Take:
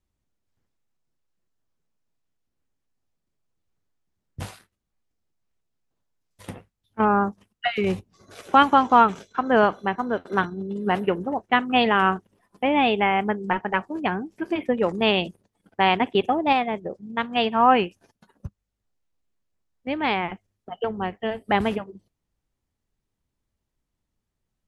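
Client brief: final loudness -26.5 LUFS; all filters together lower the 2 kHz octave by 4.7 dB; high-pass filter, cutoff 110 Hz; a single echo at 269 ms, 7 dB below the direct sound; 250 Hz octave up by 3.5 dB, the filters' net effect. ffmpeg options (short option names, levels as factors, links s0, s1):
-af "highpass=110,equalizer=f=250:t=o:g=4.5,equalizer=f=2000:t=o:g=-6.5,aecho=1:1:269:0.447,volume=0.596"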